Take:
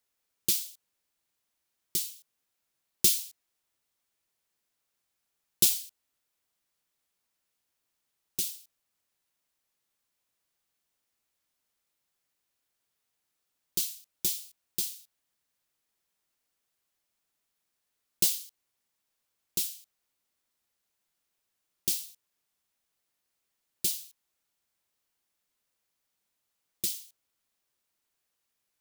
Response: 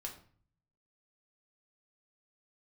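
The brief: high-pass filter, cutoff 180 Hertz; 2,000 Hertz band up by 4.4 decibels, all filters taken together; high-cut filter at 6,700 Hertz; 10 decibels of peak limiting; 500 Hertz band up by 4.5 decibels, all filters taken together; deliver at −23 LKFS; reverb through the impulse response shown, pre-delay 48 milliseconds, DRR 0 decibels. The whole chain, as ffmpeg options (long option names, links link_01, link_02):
-filter_complex "[0:a]highpass=180,lowpass=6700,equalizer=frequency=500:width_type=o:gain=7.5,equalizer=frequency=2000:width_type=o:gain=6,alimiter=limit=-20.5dB:level=0:latency=1,asplit=2[link_01][link_02];[1:a]atrim=start_sample=2205,adelay=48[link_03];[link_02][link_03]afir=irnorm=-1:irlink=0,volume=2.5dB[link_04];[link_01][link_04]amix=inputs=2:normalize=0,volume=12.5dB"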